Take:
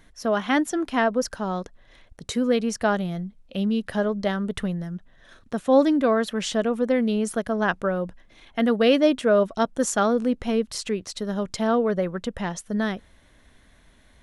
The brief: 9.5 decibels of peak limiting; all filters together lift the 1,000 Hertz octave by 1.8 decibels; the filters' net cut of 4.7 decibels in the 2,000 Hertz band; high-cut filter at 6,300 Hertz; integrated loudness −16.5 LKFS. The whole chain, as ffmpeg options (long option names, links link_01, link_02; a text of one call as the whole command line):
ffmpeg -i in.wav -af "lowpass=6300,equalizer=frequency=1000:width_type=o:gain=4.5,equalizer=frequency=2000:width_type=o:gain=-8.5,volume=10dB,alimiter=limit=-6dB:level=0:latency=1" out.wav